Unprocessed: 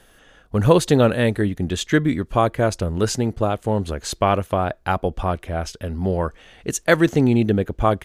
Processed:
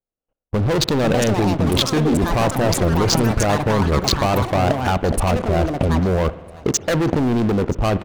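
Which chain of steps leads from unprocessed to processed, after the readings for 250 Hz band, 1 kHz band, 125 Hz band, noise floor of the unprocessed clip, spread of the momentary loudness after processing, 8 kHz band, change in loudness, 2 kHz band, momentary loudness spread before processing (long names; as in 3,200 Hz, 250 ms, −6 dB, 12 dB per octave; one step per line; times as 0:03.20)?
+1.5 dB, +2.0 dB, +3.0 dB, −54 dBFS, 3 LU, +5.5 dB, +2.0 dB, 0.0 dB, 10 LU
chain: adaptive Wiener filter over 25 samples
low-pass filter 5,700 Hz 24 dB per octave
noise gate −50 dBFS, range −20 dB
low-shelf EQ 310 Hz −3 dB
leveller curve on the samples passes 5
in parallel at +2 dB: brickwall limiter −12 dBFS, peak gain reduction 9 dB
on the sum: output level in coarse steps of 19 dB
on a send: repeating echo 976 ms, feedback 43%, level −23 dB
on the sum: delay with pitch and tempo change per echo 679 ms, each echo +7 semitones, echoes 3, each echo −6 dB
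spring reverb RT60 1.2 s, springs 54 ms, chirp 70 ms, DRR 15.5 dB
level +1.5 dB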